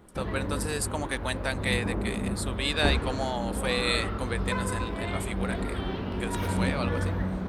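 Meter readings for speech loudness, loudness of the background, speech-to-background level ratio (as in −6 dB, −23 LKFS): −32.0 LKFS, −31.5 LKFS, −0.5 dB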